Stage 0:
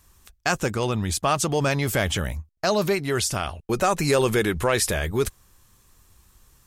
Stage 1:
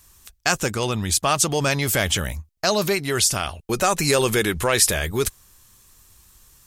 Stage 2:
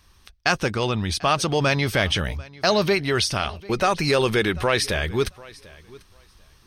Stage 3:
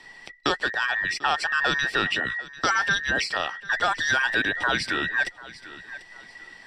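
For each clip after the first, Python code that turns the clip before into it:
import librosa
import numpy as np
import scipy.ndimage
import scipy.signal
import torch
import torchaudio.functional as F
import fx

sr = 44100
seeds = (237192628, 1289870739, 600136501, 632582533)

y1 = fx.high_shelf(x, sr, hz=2400.0, db=8.0)
y2 = fx.rider(y1, sr, range_db=10, speed_s=2.0)
y2 = scipy.signal.savgol_filter(y2, 15, 4, mode='constant')
y2 = fx.echo_feedback(y2, sr, ms=743, feedback_pct=17, wet_db=-22.0)
y3 = fx.band_invert(y2, sr, width_hz=2000)
y3 = scipy.signal.sosfilt(scipy.signal.butter(2, 5300.0, 'lowpass', fs=sr, output='sos'), y3)
y3 = fx.band_squash(y3, sr, depth_pct=40)
y3 = y3 * librosa.db_to_amplitude(-3.0)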